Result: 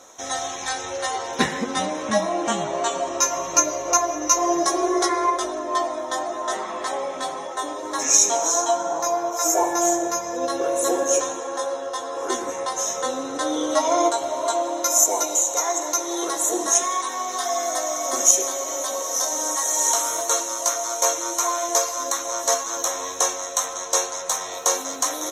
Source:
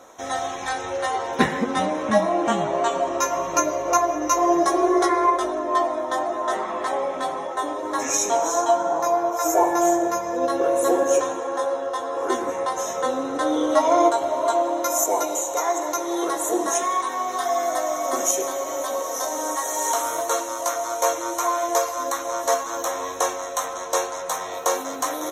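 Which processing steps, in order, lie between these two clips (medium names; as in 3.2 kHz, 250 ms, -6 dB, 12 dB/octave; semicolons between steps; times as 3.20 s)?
peaking EQ 6 kHz +11 dB 1.8 oct; trim -3 dB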